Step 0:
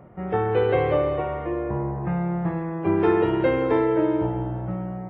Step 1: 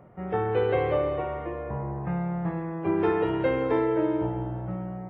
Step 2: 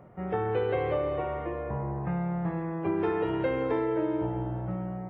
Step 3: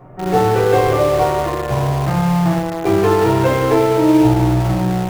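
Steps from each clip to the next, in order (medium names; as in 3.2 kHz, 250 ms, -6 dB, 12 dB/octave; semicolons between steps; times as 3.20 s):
hum notches 50/100/150/200/250/300/350 Hz; trim -3.5 dB
compression 2:1, threshold -27 dBFS, peak gain reduction 4.5 dB
simulated room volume 160 m³, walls furnished, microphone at 3.5 m; in parallel at -9 dB: bit crusher 4-bit; on the sum: trim +4.5 dB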